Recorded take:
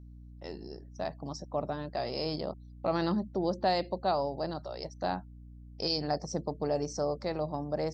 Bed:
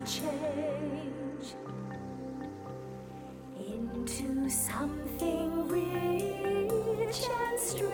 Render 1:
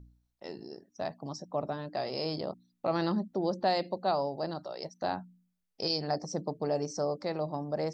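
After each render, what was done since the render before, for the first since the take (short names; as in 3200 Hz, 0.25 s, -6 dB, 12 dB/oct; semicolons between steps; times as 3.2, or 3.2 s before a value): de-hum 60 Hz, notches 5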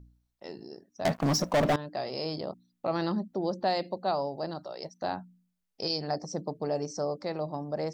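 1.05–1.76 sample leveller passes 5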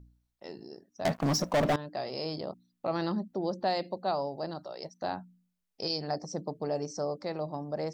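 gain -1.5 dB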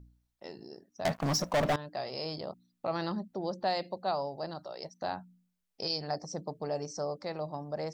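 dynamic EQ 290 Hz, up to -5 dB, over -45 dBFS, Q 0.92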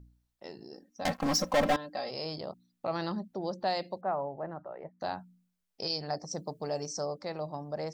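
0.73–2.11 comb 3.8 ms, depth 75%; 4.01–5 steep low-pass 2100 Hz; 6.31–7.06 high shelf 4300 Hz +8.5 dB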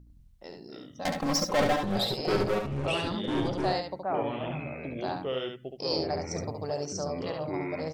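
echoes that change speed 0.1 s, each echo -6 st, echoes 2; on a send: echo 70 ms -5.5 dB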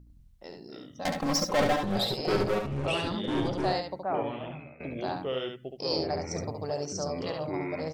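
4.14–4.8 fade out, to -16 dB; 7.01–7.47 bell 6500 Hz +4.5 dB 1.8 oct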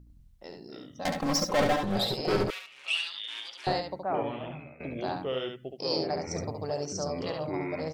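2.5–3.67 resonant high-pass 2700 Hz, resonance Q 1.7; 5.73–6.27 HPF 120 Hz 24 dB/oct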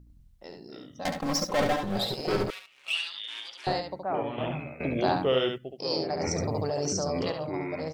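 1.09–2.93 G.711 law mismatch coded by A; 4.38–5.58 gain +7.5 dB; 6.2–7.32 fast leveller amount 100%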